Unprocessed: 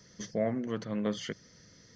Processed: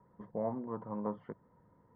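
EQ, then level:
transistor ladder low-pass 1,000 Hz, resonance 80%
notch filter 650 Hz, Q 21
+5.5 dB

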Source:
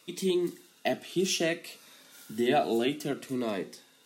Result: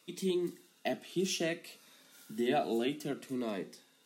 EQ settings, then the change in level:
low shelf with overshoot 110 Hz −12 dB, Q 1.5
−6.0 dB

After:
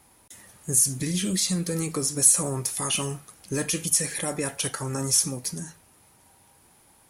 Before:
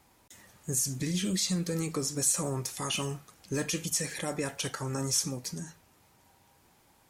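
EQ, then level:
parametric band 10,000 Hz +15 dB 0.23 octaves
+3.5 dB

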